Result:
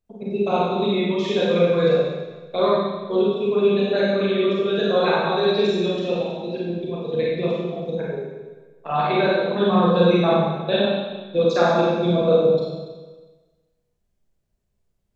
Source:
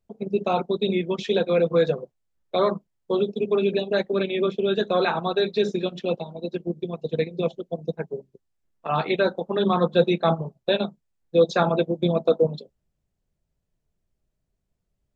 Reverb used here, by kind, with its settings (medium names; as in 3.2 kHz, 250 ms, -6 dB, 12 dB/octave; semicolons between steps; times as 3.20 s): Schroeder reverb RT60 1.3 s, combs from 31 ms, DRR -6 dB; trim -3.5 dB